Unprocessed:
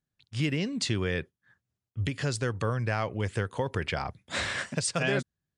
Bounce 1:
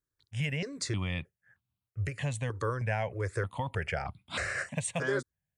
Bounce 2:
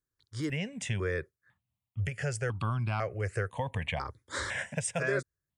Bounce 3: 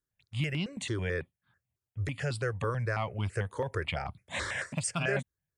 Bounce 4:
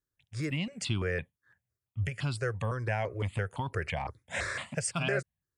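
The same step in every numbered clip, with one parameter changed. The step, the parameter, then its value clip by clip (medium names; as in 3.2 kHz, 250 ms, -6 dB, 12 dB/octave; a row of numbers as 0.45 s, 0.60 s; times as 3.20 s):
stepped phaser, rate: 3.2 Hz, 2 Hz, 9.1 Hz, 5.9 Hz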